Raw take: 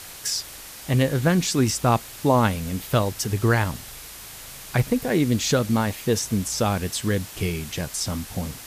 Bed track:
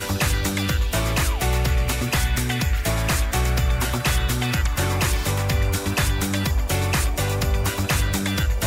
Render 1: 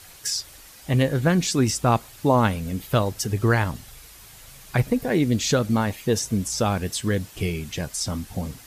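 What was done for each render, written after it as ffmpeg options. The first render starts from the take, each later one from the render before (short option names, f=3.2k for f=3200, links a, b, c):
-af "afftdn=nr=8:nf=-40"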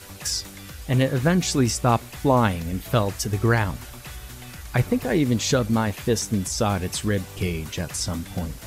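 -filter_complex "[1:a]volume=-18dB[a];[0:a][a]amix=inputs=2:normalize=0"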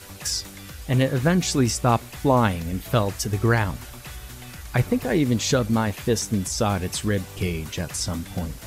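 -af anull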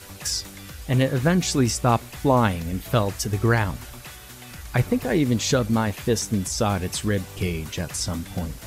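-filter_complex "[0:a]asettb=1/sr,asplit=3[a][b][c];[a]atrim=end=4.054[d];[b]atrim=start=4.05:end=4.51,asetpts=PTS-STARTPTS,afade=t=in:d=0.004:c=qsin,afade=t=out:st=0.456:d=0.004:c=qsin,highpass=f=170:p=1[e];[c]atrim=start=4.506[f];[d][e]acrossfade=d=0.004:c1=hsin:c2=qsin[g];[g][f]acrossfade=d=0.004:c1=qsin:c2=hsin"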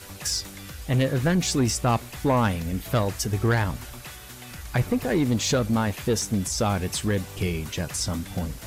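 -af "asoftclip=type=tanh:threshold=-14.5dB"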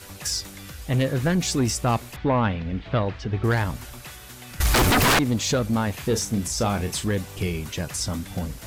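-filter_complex "[0:a]asettb=1/sr,asplit=3[a][b][c];[a]atrim=end=2.164[d];[b]atrim=start=2.16:end=3.44,asetpts=PTS-STARTPTS,afade=t=in:d=0.004:c=qsin,afade=t=out:st=1.276:d=0.004:c=qsin,lowpass=f=3.7k:w=0.5412,lowpass=f=3.7k:w=1.3066[e];[c]atrim=start=3.436[f];[d][e]acrossfade=d=0.004:c1=hsin:c2=qsin[g];[g][f]acrossfade=d=0.004:c1=qsin:c2=hsin,asettb=1/sr,asplit=3[h][i][j];[h]atrim=end=4.604[k];[i]atrim=start=4.6:end=5.19,asetpts=PTS-STARTPTS,afade=t=in:d=0.004:c=qsin,afade=t=out:st=0.586:d=0.004:c=qsin,aeval=exprs='0.188*sin(PI/2*6.31*val(0)/0.188)':c=same[l];[j]atrim=start=5.186[m];[k][l]acrossfade=d=0.004:c1=hsin:c2=qsin[n];[n][m]acrossfade=d=0.004:c1=qsin:c2=hsin,asettb=1/sr,asplit=3[o][p][q];[o]atrim=end=5.914[r];[p]atrim=start=5.91:end=7.04,asetpts=PTS-STARTPTS,afade=t=in:d=0.004:c=qsin,afade=t=out:st=1.126:d=0.004:c=qsin,asplit=2[s][t];[t]adelay=35,volume=-9dB[u];[s][u]amix=inputs=2:normalize=0,atrim=end_sample=49833[v];[q]atrim=start=7.036[w];[r][v]acrossfade=d=0.004:c1=hsin:c2=qsin[x];[x][w]acrossfade=d=0.004:c1=qsin:c2=hsin"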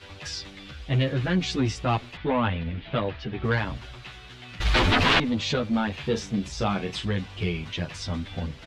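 -filter_complex "[0:a]lowpass=f=3.4k:t=q:w=1.8,asplit=2[a][b];[b]adelay=9.8,afreqshift=-0.36[c];[a][c]amix=inputs=2:normalize=1"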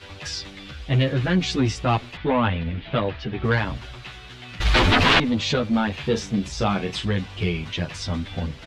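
-af "volume=3.5dB"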